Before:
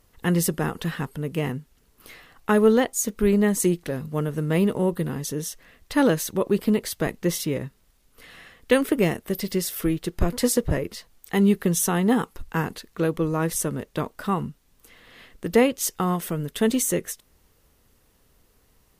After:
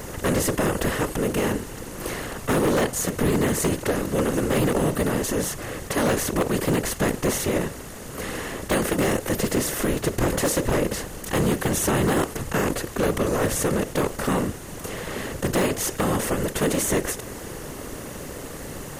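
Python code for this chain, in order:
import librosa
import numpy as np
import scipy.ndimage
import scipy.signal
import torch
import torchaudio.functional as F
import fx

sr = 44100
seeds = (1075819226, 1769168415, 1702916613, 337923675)

y = fx.bin_compress(x, sr, power=0.4)
y = fx.whisperise(y, sr, seeds[0])
y = 10.0 ** (-8.5 / 20.0) * (np.abs((y / 10.0 ** (-8.5 / 20.0) + 3.0) % 4.0 - 2.0) - 1.0)
y = y * 10.0 ** (-5.5 / 20.0)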